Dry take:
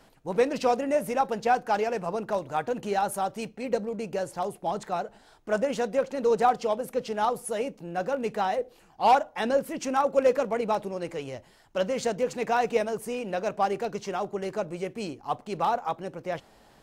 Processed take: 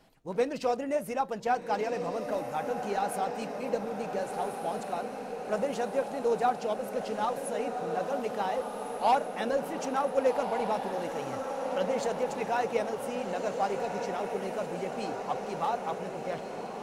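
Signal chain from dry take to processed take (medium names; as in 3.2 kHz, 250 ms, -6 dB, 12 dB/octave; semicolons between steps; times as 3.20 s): coarse spectral quantiser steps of 15 dB; echo that smears into a reverb 1505 ms, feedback 66%, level -6 dB; trim -4.5 dB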